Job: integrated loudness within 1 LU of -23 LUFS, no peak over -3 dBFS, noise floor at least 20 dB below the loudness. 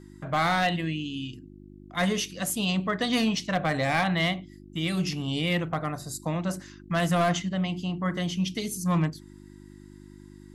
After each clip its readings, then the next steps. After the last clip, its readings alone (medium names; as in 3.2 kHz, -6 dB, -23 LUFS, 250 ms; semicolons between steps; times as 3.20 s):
clipped samples 0.6%; clipping level -18.0 dBFS; hum 50 Hz; highest harmonic 350 Hz; hum level -45 dBFS; loudness -27.5 LUFS; peak level -18.0 dBFS; loudness target -23.0 LUFS
-> clip repair -18 dBFS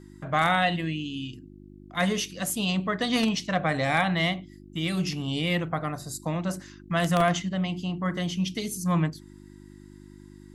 clipped samples 0.0%; hum 50 Hz; highest harmonic 350 Hz; hum level -45 dBFS
-> de-hum 50 Hz, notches 7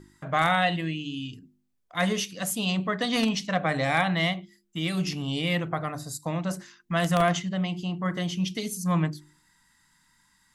hum not found; loudness -27.5 LUFS; peak level -9.0 dBFS; loudness target -23.0 LUFS
-> trim +4.5 dB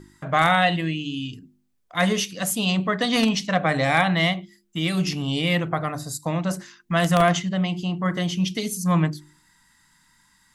loudness -23.0 LUFS; peak level -4.5 dBFS; noise floor -64 dBFS